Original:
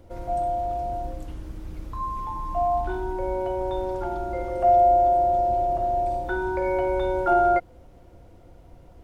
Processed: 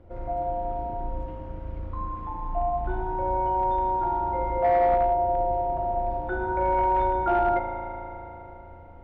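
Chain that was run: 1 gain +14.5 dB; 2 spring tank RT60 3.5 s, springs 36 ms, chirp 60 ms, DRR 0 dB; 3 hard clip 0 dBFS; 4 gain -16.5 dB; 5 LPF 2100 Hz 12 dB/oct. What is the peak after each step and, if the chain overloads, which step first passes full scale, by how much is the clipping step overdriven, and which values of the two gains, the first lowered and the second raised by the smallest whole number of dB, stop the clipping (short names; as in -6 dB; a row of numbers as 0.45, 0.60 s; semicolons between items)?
+4.5, +6.0, 0.0, -16.5, -16.0 dBFS; step 1, 6.0 dB; step 1 +8.5 dB, step 4 -10.5 dB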